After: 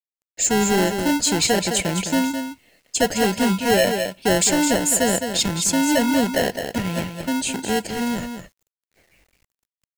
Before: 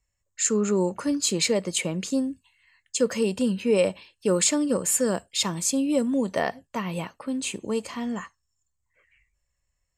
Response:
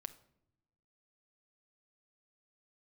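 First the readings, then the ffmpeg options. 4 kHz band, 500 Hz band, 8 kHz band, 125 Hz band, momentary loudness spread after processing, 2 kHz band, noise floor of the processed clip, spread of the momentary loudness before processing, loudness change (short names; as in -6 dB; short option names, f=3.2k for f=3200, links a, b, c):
+7.0 dB, +3.5 dB, +5.0 dB, +5.5 dB, 8 LU, +10.0 dB, under -85 dBFS, 10 LU, +5.0 dB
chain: -filter_complex "[0:a]acrossover=split=1900[a][b];[a]acrusher=samples=37:mix=1:aa=0.000001[c];[c][b]amix=inputs=2:normalize=0,aecho=1:1:210:0.376,asoftclip=type=tanh:threshold=-17dB,acrusher=bits=10:mix=0:aa=0.000001,volume=6dB"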